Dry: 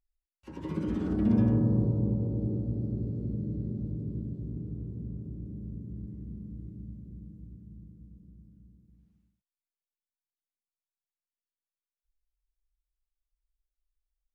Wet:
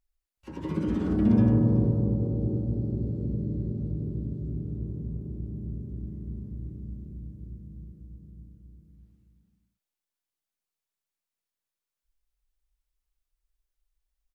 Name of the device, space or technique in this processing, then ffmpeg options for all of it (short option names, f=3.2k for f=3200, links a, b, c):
ducked delay: -filter_complex "[0:a]asplit=3[a][b][c];[b]adelay=375,volume=-5.5dB[d];[c]apad=whole_len=649034[e];[d][e]sidechaincompress=threshold=-32dB:ratio=8:attack=16:release=954[f];[a][f]amix=inputs=2:normalize=0,volume=3.5dB"